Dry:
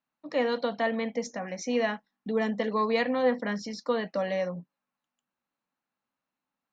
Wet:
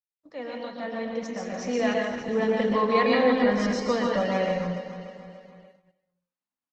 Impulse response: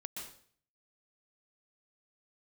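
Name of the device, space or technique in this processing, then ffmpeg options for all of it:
speakerphone in a meeting room: -filter_complex "[0:a]asettb=1/sr,asplit=3[s0][s1][s2];[s0]atrim=end=2.464[s3];[s1]atrim=start=2.46:end=3.05,asetpts=PTS-STARTPTS,afade=t=in:d=0.004:c=qsin,afade=t=out:st=0.586:d=0.004:c=qsin,lowpass=f=5600:w=0.5412,lowpass=f=5600:w=1.3066[s4];[s2]atrim=start=3.046[s5];[s3][s4]acrossfade=d=0.004:c1=hsin:c2=qsin[s6];[s6][s5]acrossfade=d=0.004:c1=qsin:c2=hsin,aecho=1:1:293|586|879|1172|1465:0.282|0.144|0.0733|0.0374|0.0191[s7];[1:a]atrim=start_sample=2205[s8];[s7][s8]afir=irnorm=-1:irlink=0,asplit=2[s9][s10];[s10]adelay=140,highpass=300,lowpass=3400,asoftclip=type=hard:threshold=0.0562,volume=0.0398[s11];[s9][s11]amix=inputs=2:normalize=0,dynaudnorm=f=260:g=11:m=4.22,agate=range=0.158:threshold=0.00398:ratio=16:detection=peak,volume=0.562" -ar 48000 -c:a libopus -b:a 16k

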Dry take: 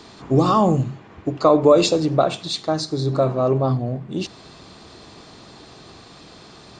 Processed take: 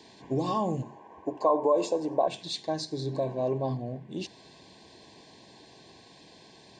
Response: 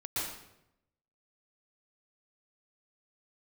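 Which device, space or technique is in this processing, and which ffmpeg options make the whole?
PA system with an anti-feedback notch: -filter_complex "[0:a]highpass=f=150:p=1,asuperstop=centerf=1300:order=20:qfactor=3.3,alimiter=limit=0.282:level=0:latency=1:release=202,asettb=1/sr,asplit=3[s0][s1][s2];[s0]atrim=end=0.824[s3];[s1]atrim=start=0.82:end=2.28,asetpts=PTS-STARTPTS,afade=t=in:d=0.004:c=qsin,afade=t=out:st=1.456:d=0.004:c=qsin,equalizer=f=125:t=o:w=1:g=-12,equalizer=f=500:t=o:w=1:g=3,equalizer=f=1000:t=o:w=1:g=12,equalizer=f=2000:t=o:w=1:g=-6,equalizer=f=4000:t=o:w=1:g=-9[s4];[s2]atrim=start=2.276[s5];[s3][s4]acrossfade=d=0.004:c1=hsin:c2=qsin[s6];[s6][s5]acrossfade=d=0.004:c1=qsin:c2=hsin,volume=0.376"

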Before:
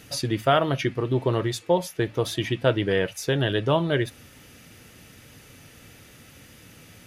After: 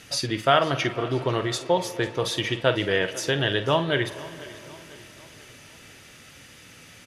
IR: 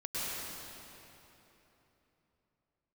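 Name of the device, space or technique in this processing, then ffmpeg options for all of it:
filtered reverb send: -filter_complex "[0:a]lowpass=9100,tiltshelf=f=740:g=-4,asplit=2[s0][s1];[s1]highpass=220,lowpass=3400[s2];[1:a]atrim=start_sample=2205[s3];[s2][s3]afir=irnorm=-1:irlink=0,volume=0.106[s4];[s0][s4]amix=inputs=2:normalize=0,asplit=2[s5][s6];[s6]adelay=49,volume=0.237[s7];[s5][s7]amix=inputs=2:normalize=0,aecho=1:1:495|990|1485|1980:0.106|0.054|0.0276|0.0141"

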